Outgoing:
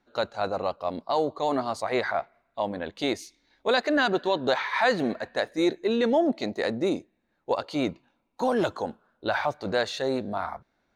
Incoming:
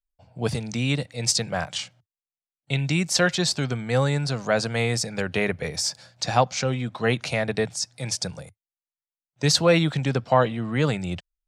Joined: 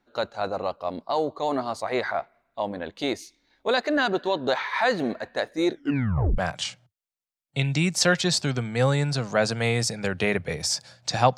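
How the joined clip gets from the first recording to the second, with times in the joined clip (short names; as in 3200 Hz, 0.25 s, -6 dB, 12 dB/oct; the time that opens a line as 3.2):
outgoing
5.7 tape stop 0.68 s
6.38 switch to incoming from 1.52 s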